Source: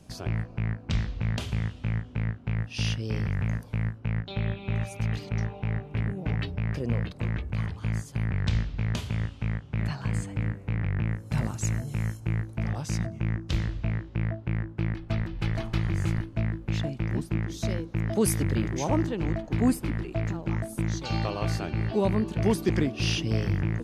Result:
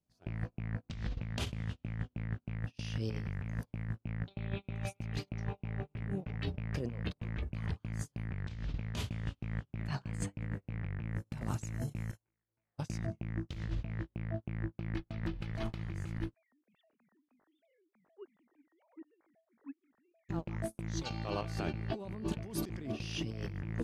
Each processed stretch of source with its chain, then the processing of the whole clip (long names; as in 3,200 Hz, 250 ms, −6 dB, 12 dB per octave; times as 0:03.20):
0:12.11–0:12.78: bass and treble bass −12 dB, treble −5 dB + downward compressor 8 to 1, threshold −45 dBFS + micro pitch shift up and down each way 16 cents
0:16.34–0:20.29: three sine waves on the formant tracks + low-shelf EQ 470 Hz −4 dB + downward compressor 3 to 1, threshold −38 dBFS
whole clip: noise gate −32 dBFS, range −36 dB; compressor whose output falls as the input rises −34 dBFS, ratio −1; level −4 dB